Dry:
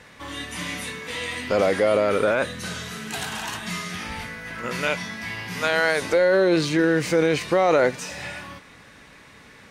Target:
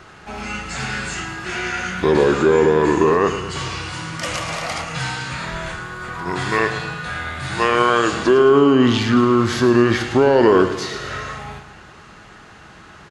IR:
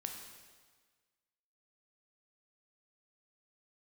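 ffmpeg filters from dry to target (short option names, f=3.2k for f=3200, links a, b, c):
-filter_complex "[0:a]asplit=2[a][b];[b]aecho=0:1:81|162|243|324|405|486:0.266|0.141|0.0747|0.0396|0.021|0.0111[c];[a][c]amix=inputs=2:normalize=0,asetrate=32667,aresample=44100,volume=5dB"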